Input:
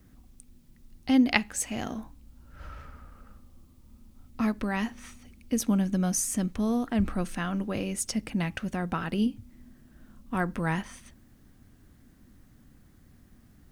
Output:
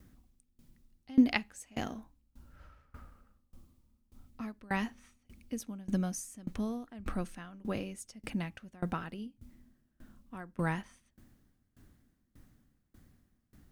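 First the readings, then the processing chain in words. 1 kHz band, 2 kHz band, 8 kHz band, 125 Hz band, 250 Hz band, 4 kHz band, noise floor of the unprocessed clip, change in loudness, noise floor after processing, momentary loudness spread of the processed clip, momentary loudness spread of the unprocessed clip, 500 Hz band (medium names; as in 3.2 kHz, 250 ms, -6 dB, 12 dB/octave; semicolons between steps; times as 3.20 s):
-7.0 dB, -7.0 dB, -14.0 dB, -7.5 dB, -7.0 dB, -9.0 dB, -58 dBFS, -7.5 dB, -76 dBFS, 17 LU, 14 LU, -7.5 dB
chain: sawtooth tremolo in dB decaying 1.7 Hz, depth 25 dB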